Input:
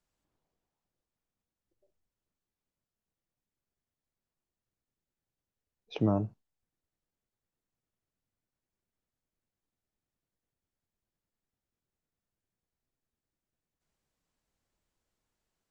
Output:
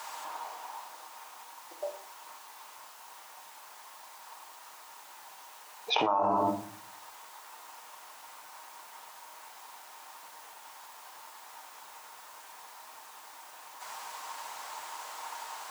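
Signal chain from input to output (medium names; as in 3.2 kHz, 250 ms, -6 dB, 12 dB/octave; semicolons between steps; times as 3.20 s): resonant high-pass 930 Hz, resonance Q 4.9; reverberation RT60 0.50 s, pre-delay 6 ms, DRR 5 dB; level flattener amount 100%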